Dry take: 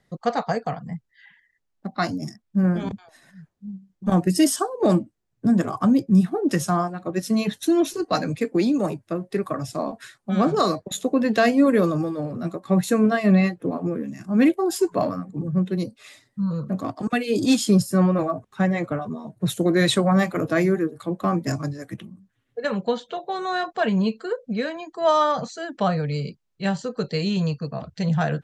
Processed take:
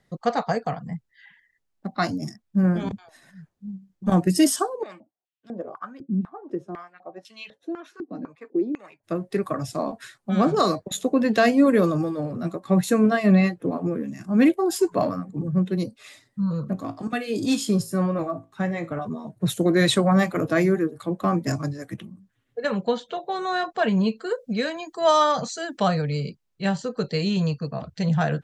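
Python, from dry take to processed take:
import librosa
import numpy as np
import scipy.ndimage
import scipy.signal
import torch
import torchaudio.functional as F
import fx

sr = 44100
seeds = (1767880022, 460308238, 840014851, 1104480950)

y = fx.filter_held_bandpass(x, sr, hz=4.0, low_hz=260.0, high_hz=3000.0, at=(4.82, 9.03), fade=0.02)
y = fx.comb_fb(y, sr, f0_hz=55.0, decay_s=0.27, harmonics='all', damping=0.0, mix_pct=60, at=(16.73, 18.97))
y = fx.high_shelf(y, sr, hz=4100.0, db=10.0, at=(24.26, 26.02))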